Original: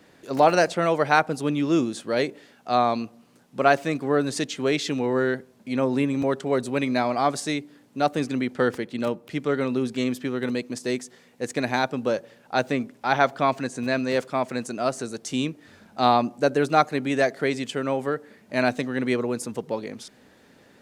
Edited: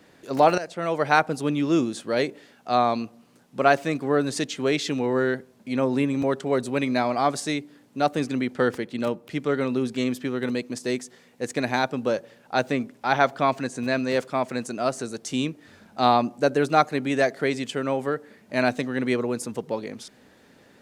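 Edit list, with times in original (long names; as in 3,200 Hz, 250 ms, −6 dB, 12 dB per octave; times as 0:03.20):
0:00.58–0:01.12: fade in, from −17 dB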